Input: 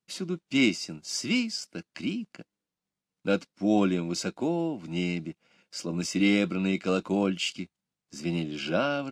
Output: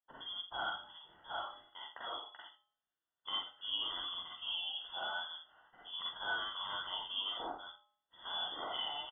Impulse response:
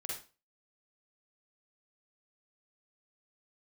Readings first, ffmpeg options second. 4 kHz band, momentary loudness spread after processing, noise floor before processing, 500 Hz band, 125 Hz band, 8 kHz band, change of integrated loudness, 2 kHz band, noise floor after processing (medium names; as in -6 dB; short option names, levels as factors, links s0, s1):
-1.5 dB, 14 LU, under -85 dBFS, -20.5 dB, under -30 dB, under -40 dB, -11.5 dB, -9.5 dB, under -85 dBFS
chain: -filter_complex "[0:a]aemphasis=mode=production:type=riaa,bandreject=f=231:t=h:w=4,bandreject=f=462:t=h:w=4,bandreject=f=693:t=h:w=4,bandreject=f=924:t=h:w=4,bandreject=f=1155:t=h:w=4,bandreject=f=1386:t=h:w=4,bandreject=f=1617:t=h:w=4,bandreject=f=1848:t=h:w=4,bandreject=f=2079:t=h:w=4,bandreject=f=2310:t=h:w=4,bandreject=f=2541:t=h:w=4,bandreject=f=2772:t=h:w=4,bandreject=f=3003:t=h:w=4,asubboost=boost=9:cutoff=83,acrossover=split=110[s0][s1];[s1]acompressor=threshold=0.0251:ratio=6[s2];[s0][s2]amix=inputs=2:normalize=0,asuperstop=centerf=1200:order=12:qfactor=1.7,aecho=1:1:83:0.133[s3];[1:a]atrim=start_sample=2205,atrim=end_sample=6174[s4];[s3][s4]afir=irnorm=-1:irlink=0,lowpass=f=3100:t=q:w=0.5098,lowpass=f=3100:t=q:w=0.6013,lowpass=f=3100:t=q:w=0.9,lowpass=f=3100:t=q:w=2.563,afreqshift=-3600,volume=0.75"